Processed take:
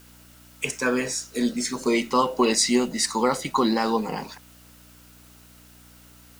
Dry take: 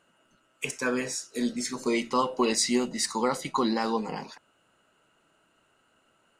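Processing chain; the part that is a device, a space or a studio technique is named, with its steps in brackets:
video cassette with head-switching buzz (hum with harmonics 60 Hz, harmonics 5, −58 dBFS −3 dB per octave; white noise bed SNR 28 dB)
level +4.5 dB

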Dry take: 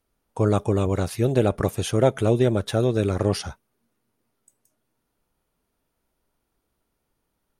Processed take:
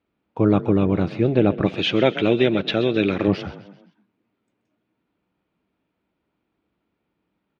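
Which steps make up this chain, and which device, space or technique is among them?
0:01.66–0:03.28: meter weighting curve D
frequency-shifting delay pedal into a guitar cabinet (echo with shifted repeats 130 ms, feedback 47%, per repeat +32 Hz, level −15.5 dB; loudspeaker in its box 79–3,700 Hz, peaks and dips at 190 Hz +8 dB, 310 Hz +8 dB, 2,400 Hz +5 dB)

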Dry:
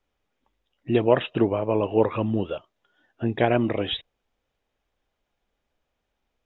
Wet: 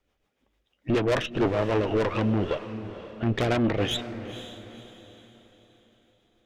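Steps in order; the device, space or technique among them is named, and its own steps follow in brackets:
0:00.94–0:01.46: high-pass filter 110 Hz 24 dB per octave
overdriven rotary cabinet (tube saturation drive 27 dB, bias 0.6; rotating-speaker cabinet horn 6.7 Hz)
feedback delay with all-pass diffusion 499 ms, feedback 41%, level −12 dB
level +8.5 dB

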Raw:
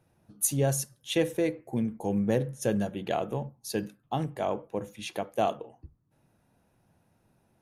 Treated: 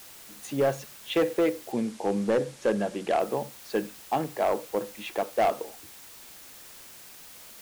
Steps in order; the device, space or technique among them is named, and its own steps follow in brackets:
aircraft radio (band-pass filter 300–2,400 Hz; hard clipping −24 dBFS, distortion −13 dB; white noise bed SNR 18 dB)
0:01.72–0:03.20: low-pass filter 10,000 Hz 24 dB per octave
level +6 dB

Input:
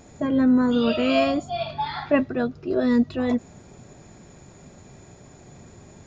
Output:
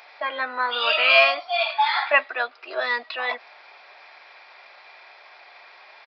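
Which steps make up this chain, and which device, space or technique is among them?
musical greeting card (downsampling to 11,025 Hz; high-pass filter 790 Hz 24 dB per octave; parametric band 2,300 Hz +7 dB 0.52 octaves)
level +8.5 dB

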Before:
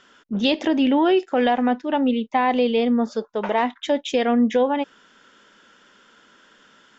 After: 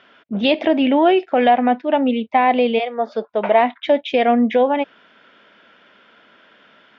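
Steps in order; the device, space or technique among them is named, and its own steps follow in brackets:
0:02.78–0:03.27: high-pass filter 680 Hz → 160 Hz 24 dB per octave
guitar cabinet (loudspeaker in its box 86–4,000 Hz, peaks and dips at 90 Hz +5 dB, 660 Hz +10 dB, 2,300 Hz +7 dB)
level +1.5 dB

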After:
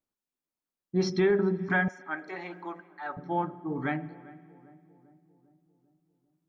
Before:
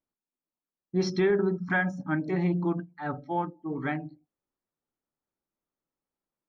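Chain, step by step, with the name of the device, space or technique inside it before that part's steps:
dub delay into a spring reverb (feedback echo with a low-pass in the loop 398 ms, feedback 60%, low-pass 970 Hz, level −18.5 dB; spring reverb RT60 2.1 s, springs 55 ms, chirp 80 ms, DRR 18.5 dB)
0:01.88–0:03.17: high-pass filter 690 Hz 12 dB per octave

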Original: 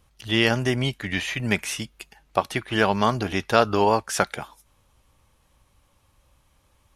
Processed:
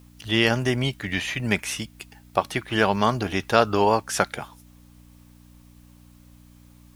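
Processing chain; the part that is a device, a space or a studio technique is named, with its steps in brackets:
video cassette with head-switching buzz (hum with harmonics 60 Hz, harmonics 5, −51 dBFS −3 dB per octave; white noise bed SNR 37 dB)

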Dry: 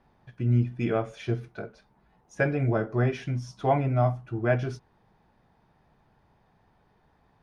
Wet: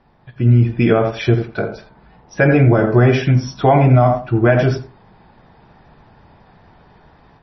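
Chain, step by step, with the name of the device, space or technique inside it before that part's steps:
0:01.37–0:03.11: hum removal 218.6 Hz, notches 12
feedback echo with a low-pass in the loop 85 ms, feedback 19%, low-pass 1,600 Hz, level −9 dB
low-bitrate web radio (automatic gain control gain up to 8.5 dB; brickwall limiter −11.5 dBFS, peak gain reduction 7.5 dB; level +8.5 dB; MP3 24 kbit/s 22,050 Hz)

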